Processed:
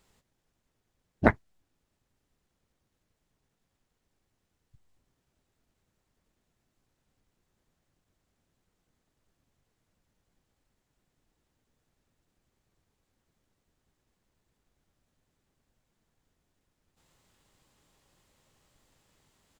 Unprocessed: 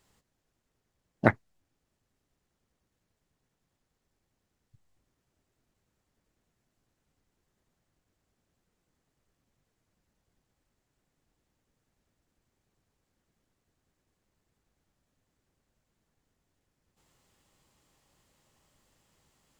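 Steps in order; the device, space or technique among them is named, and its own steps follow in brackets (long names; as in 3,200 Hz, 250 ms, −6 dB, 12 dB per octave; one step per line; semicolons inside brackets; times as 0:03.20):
octave pedal (pitch-shifted copies added −12 semitones −5 dB)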